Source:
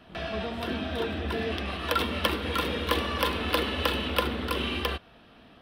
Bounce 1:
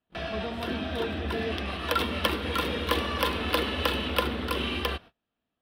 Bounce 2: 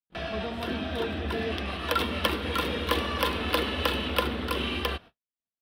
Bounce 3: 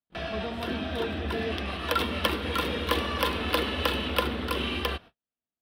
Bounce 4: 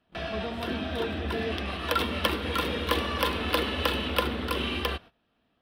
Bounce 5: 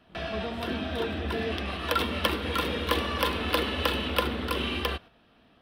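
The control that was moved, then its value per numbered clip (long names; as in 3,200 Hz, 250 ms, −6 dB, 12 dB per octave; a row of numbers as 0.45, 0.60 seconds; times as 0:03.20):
noise gate, range: −31, −58, −46, −19, −7 decibels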